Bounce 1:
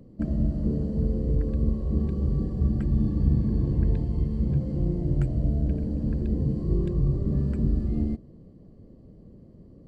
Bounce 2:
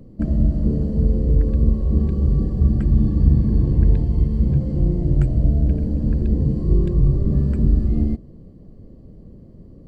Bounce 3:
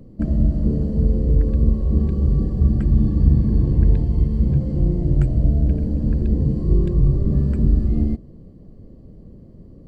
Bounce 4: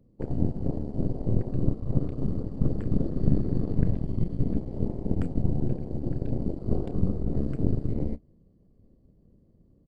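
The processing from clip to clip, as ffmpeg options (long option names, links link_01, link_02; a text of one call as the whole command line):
ffmpeg -i in.wav -af "lowshelf=frequency=62:gain=8,volume=4.5dB" out.wav
ffmpeg -i in.wav -af anull out.wav
ffmpeg -i in.wav -filter_complex "[0:a]asplit=2[link_01][link_02];[link_02]adelay=31,volume=-11dB[link_03];[link_01][link_03]amix=inputs=2:normalize=0,aeval=exprs='0.794*(cos(1*acos(clip(val(0)/0.794,-1,1)))-cos(1*PI/2))+0.316*(cos(3*acos(clip(val(0)/0.794,-1,1)))-cos(3*PI/2))+0.355*(cos(4*acos(clip(val(0)/0.794,-1,1)))-cos(4*PI/2))+0.0178*(cos(7*acos(clip(val(0)/0.794,-1,1)))-cos(7*PI/2))':channel_layout=same,volume=-8.5dB" out.wav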